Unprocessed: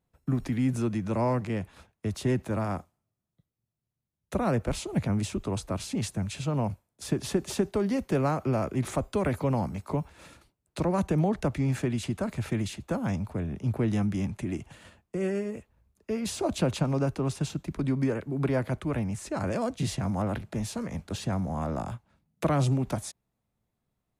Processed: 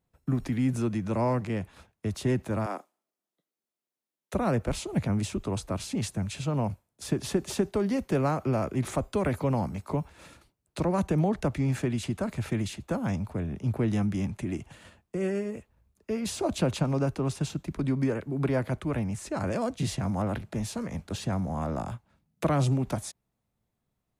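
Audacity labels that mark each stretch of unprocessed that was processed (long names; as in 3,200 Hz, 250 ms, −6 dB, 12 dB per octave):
2.660000	4.340000	high-pass filter 280 Hz 24 dB per octave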